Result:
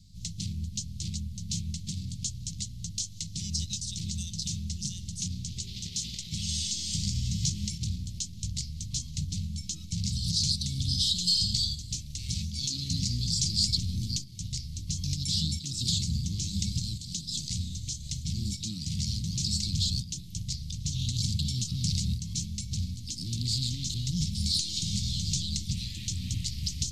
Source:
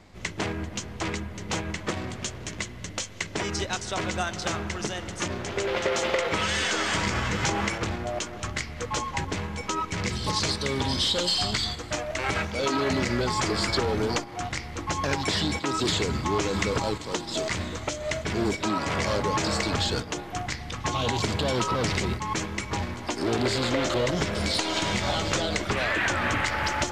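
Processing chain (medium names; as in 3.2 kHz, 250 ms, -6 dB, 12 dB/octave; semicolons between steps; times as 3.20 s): elliptic band-stop 170–4200 Hz, stop band 50 dB; 12.23–13.68 s: dynamic bell 5.6 kHz, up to +4 dB, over -44 dBFS, Q 0.99; trim +2 dB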